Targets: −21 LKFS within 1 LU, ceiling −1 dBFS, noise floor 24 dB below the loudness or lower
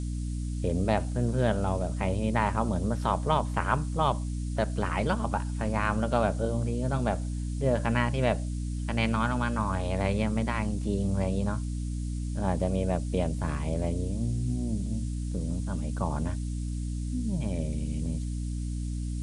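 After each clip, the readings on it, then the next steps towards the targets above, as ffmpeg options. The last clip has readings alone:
mains hum 60 Hz; hum harmonics up to 300 Hz; level of the hum −29 dBFS; background noise floor −32 dBFS; target noise floor −54 dBFS; integrated loudness −29.5 LKFS; sample peak −9.0 dBFS; target loudness −21.0 LKFS
→ -af "bandreject=frequency=60:width_type=h:width=4,bandreject=frequency=120:width_type=h:width=4,bandreject=frequency=180:width_type=h:width=4,bandreject=frequency=240:width_type=h:width=4,bandreject=frequency=300:width_type=h:width=4"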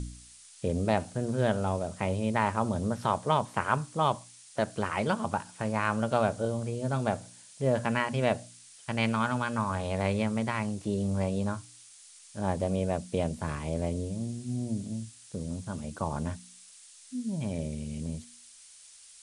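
mains hum none found; background noise floor −53 dBFS; target noise floor −55 dBFS
→ -af "afftdn=noise_reduction=6:noise_floor=-53"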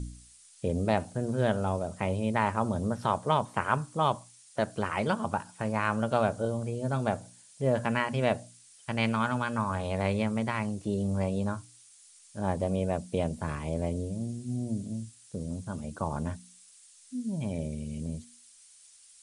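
background noise floor −57 dBFS; integrated loudness −31.0 LKFS; sample peak −10.0 dBFS; target loudness −21.0 LKFS
→ -af "volume=10dB,alimiter=limit=-1dB:level=0:latency=1"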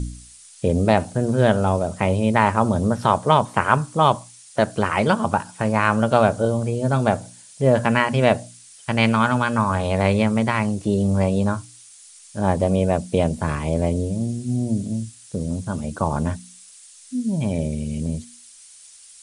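integrated loudness −21.0 LKFS; sample peak −1.0 dBFS; background noise floor −47 dBFS

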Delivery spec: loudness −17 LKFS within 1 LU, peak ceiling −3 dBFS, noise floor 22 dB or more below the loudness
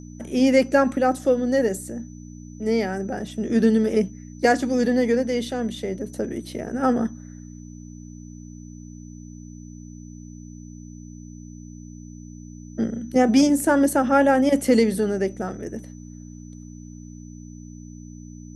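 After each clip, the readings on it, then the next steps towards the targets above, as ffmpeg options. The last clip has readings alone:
mains hum 60 Hz; hum harmonics up to 300 Hz; level of the hum −38 dBFS; interfering tone 6,000 Hz; level of the tone −52 dBFS; integrated loudness −21.5 LKFS; sample peak −6.0 dBFS; target loudness −17.0 LKFS
→ -af "bandreject=frequency=60:width_type=h:width=4,bandreject=frequency=120:width_type=h:width=4,bandreject=frequency=180:width_type=h:width=4,bandreject=frequency=240:width_type=h:width=4,bandreject=frequency=300:width_type=h:width=4"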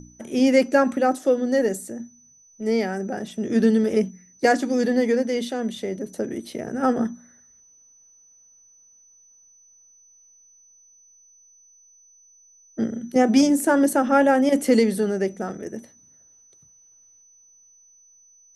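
mains hum none found; interfering tone 6,000 Hz; level of the tone −52 dBFS
→ -af "bandreject=frequency=6000:width=30"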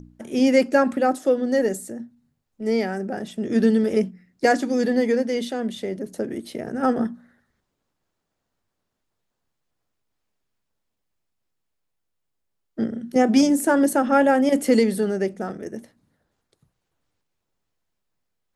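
interfering tone none found; integrated loudness −22.0 LKFS; sample peak −6.0 dBFS; target loudness −17.0 LKFS
→ -af "volume=5dB,alimiter=limit=-3dB:level=0:latency=1"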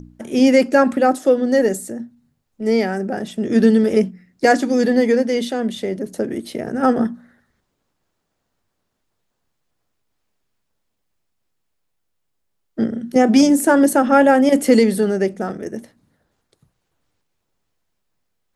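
integrated loudness −17.0 LKFS; sample peak −3.0 dBFS; background noise floor −73 dBFS

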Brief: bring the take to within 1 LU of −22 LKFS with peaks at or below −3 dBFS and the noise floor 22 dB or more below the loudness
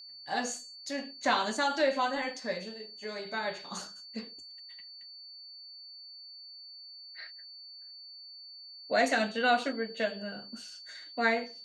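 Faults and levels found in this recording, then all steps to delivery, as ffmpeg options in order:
interfering tone 4,500 Hz; level of the tone −46 dBFS; integrated loudness −32.0 LKFS; sample peak −14.0 dBFS; target loudness −22.0 LKFS
→ -af "bandreject=frequency=4500:width=30"
-af "volume=10dB"

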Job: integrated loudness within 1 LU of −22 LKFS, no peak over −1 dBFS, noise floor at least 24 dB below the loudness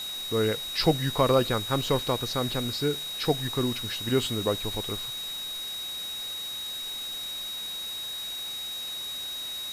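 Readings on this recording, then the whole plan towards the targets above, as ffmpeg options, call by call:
interfering tone 3,800 Hz; level of the tone −33 dBFS; background noise floor −35 dBFS; target noise floor −53 dBFS; integrated loudness −28.5 LKFS; sample peak −9.0 dBFS; target loudness −22.0 LKFS
→ -af "bandreject=frequency=3800:width=30"
-af "afftdn=noise_reduction=18:noise_floor=-35"
-af "volume=6.5dB"

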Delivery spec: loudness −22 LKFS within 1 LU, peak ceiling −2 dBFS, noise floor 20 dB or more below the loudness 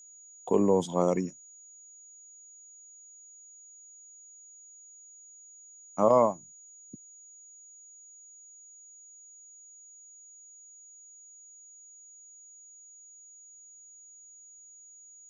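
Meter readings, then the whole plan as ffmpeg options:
interfering tone 6,800 Hz; level of the tone −50 dBFS; integrated loudness −26.5 LKFS; sample peak −10.5 dBFS; target loudness −22.0 LKFS
→ -af "bandreject=frequency=6800:width=30"
-af "volume=4.5dB"

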